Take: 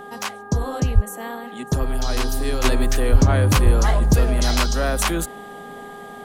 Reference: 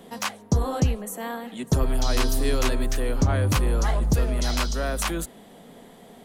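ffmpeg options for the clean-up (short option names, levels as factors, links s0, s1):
-filter_complex "[0:a]bandreject=f=406.2:t=h:w=4,bandreject=f=812.4:t=h:w=4,bandreject=f=1218.6:t=h:w=4,bandreject=f=1624.8:t=h:w=4,bandreject=f=780:w=30,asplit=3[s0][s1][s2];[s0]afade=t=out:st=0.94:d=0.02[s3];[s1]highpass=f=140:w=0.5412,highpass=f=140:w=1.3066,afade=t=in:st=0.94:d=0.02,afade=t=out:st=1.06:d=0.02[s4];[s2]afade=t=in:st=1.06:d=0.02[s5];[s3][s4][s5]amix=inputs=3:normalize=0,asplit=3[s6][s7][s8];[s6]afade=t=out:st=3.11:d=0.02[s9];[s7]highpass=f=140:w=0.5412,highpass=f=140:w=1.3066,afade=t=in:st=3.11:d=0.02,afade=t=out:st=3.23:d=0.02[s10];[s8]afade=t=in:st=3.23:d=0.02[s11];[s9][s10][s11]amix=inputs=3:normalize=0,asplit=3[s12][s13][s14];[s12]afade=t=out:st=3.64:d=0.02[s15];[s13]highpass=f=140:w=0.5412,highpass=f=140:w=1.3066,afade=t=in:st=3.64:d=0.02,afade=t=out:st=3.76:d=0.02[s16];[s14]afade=t=in:st=3.76:d=0.02[s17];[s15][s16][s17]amix=inputs=3:normalize=0,asetnsamples=n=441:p=0,asendcmd='2.64 volume volume -5.5dB',volume=1"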